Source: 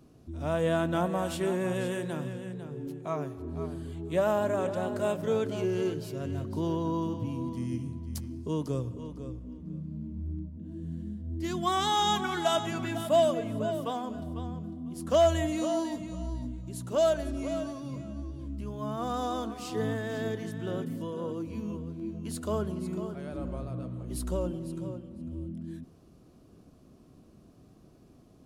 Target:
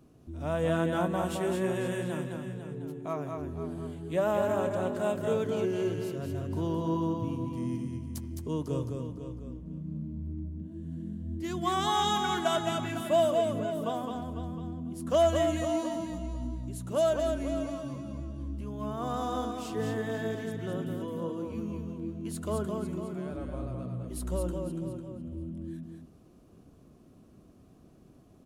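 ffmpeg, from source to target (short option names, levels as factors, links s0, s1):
-filter_complex "[0:a]equalizer=f=4700:w=2.1:g=-4,asplit=2[s0][s1];[s1]aecho=0:1:213:0.596[s2];[s0][s2]amix=inputs=2:normalize=0,volume=0.841"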